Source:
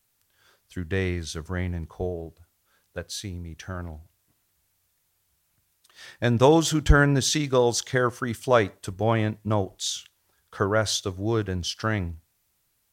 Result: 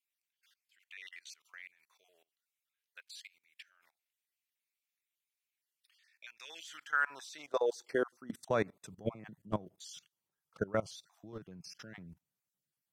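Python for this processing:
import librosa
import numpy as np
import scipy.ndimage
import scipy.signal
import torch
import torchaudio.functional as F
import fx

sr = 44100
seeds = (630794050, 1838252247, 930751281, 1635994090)

y = fx.spec_dropout(x, sr, seeds[0], share_pct=26)
y = fx.filter_sweep_highpass(y, sr, from_hz=2300.0, to_hz=160.0, start_s=6.61, end_s=8.45, q=2.7)
y = fx.level_steps(y, sr, step_db=21)
y = F.gain(torch.from_numpy(y), -8.0).numpy()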